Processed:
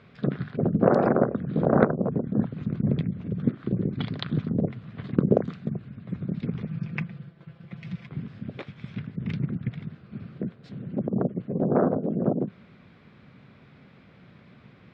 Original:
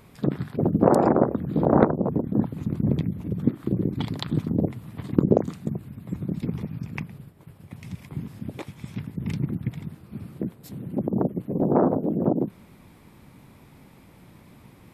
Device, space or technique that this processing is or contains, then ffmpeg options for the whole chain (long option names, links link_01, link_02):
guitar cabinet: -filter_complex "[0:a]highpass=84,equalizer=frequency=86:width_type=q:width=4:gain=-4,equalizer=frequency=310:width_type=q:width=4:gain=-7,equalizer=frequency=900:width_type=q:width=4:gain=-9,equalizer=frequency=1500:width_type=q:width=4:gain=5,lowpass=frequency=4200:width=0.5412,lowpass=frequency=4200:width=1.3066,asettb=1/sr,asplit=3[link_01][link_02][link_03];[link_01]atrim=end=6.674[link_04];[link_02]atrim=start=6.67:end=8.07,asetpts=PTS-STARTPTS,afade=type=in:duration=0.004:curve=qsin,afade=type=out:start_time=1.396:duration=0.004:curve=qsin,aecho=1:1:5.9:0.7,atrim=end_sample=61740[link_05];[link_03]atrim=start=8.066[link_06];[link_04][link_05]acrossfade=duration=0.004:curve1=hsin:curve2=qsin[link_07];[link_07][link_06]acrossfade=duration=0.004:curve1=qsin:curve2=hsin"